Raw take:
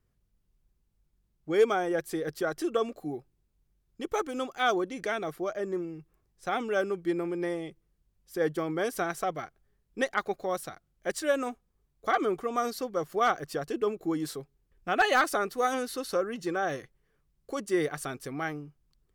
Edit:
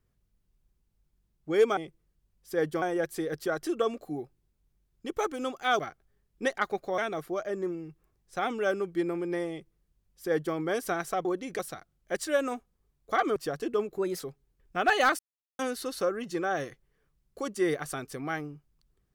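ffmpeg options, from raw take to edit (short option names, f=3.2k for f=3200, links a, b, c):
-filter_complex "[0:a]asplit=12[a][b][c][d][e][f][g][h][i][j][k][l];[a]atrim=end=1.772[m];[b]atrim=start=7.598:end=8.652[n];[c]atrim=start=1.768:end=4.742[o];[d]atrim=start=9.348:end=10.542[p];[e]atrim=start=5.078:end=9.352[q];[f]atrim=start=4.738:end=5.082[r];[g]atrim=start=10.538:end=12.312[s];[h]atrim=start=13.438:end=14.064[t];[i]atrim=start=14.06:end=14.32,asetpts=PTS-STARTPTS,asetrate=52038,aresample=44100[u];[j]atrim=start=14.316:end=15.31,asetpts=PTS-STARTPTS,afade=t=out:st=0.99:d=0.004:c=hsin[v];[k]atrim=start=15.31:end=15.71,asetpts=PTS-STARTPTS,volume=0[w];[l]atrim=start=15.71,asetpts=PTS-STARTPTS,afade=t=in:d=0.004:c=hsin[x];[m][n]acrossfade=d=0.004:c1=hsin:c2=hsin[y];[y][o]acrossfade=d=0.004:c1=hsin:c2=hsin[z];[z][p]acrossfade=d=0.004:c1=hsin:c2=hsin[aa];[aa][q]acrossfade=d=0.004:c1=hsin:c2=hsin[ab];[ab][r]acrossfade=d=0.004:c1=hsin:c2=hsin[ac];[ac][s]acrossfade=d=0.004:c1=hsin:c2=hsin[ad];[ad][t]acrossfade=d=0.004:c1=hsin:c2=hsin[ae];[ae][u]acrossfade=d=0.004:c1=hsin:c2=hsin[af];[v][w][x]concat=n=3:v=0:a=1[ag];[af][ag]acrossfade=d=0.004:c1=hsin:c2=hsin"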